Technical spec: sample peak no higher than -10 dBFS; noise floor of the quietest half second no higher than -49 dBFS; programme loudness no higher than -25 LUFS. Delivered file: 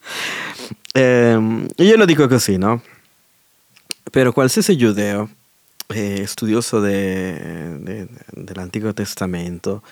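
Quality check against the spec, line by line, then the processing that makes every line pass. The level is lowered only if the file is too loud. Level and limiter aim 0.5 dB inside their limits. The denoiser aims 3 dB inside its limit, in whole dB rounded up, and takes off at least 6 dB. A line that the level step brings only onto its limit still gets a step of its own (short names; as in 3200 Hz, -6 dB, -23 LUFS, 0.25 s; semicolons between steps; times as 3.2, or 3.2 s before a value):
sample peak -2.0 dBFS: fail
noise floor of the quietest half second -57 dBFS: OK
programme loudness -17.0 LUFS: fail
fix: gain -8.5 dB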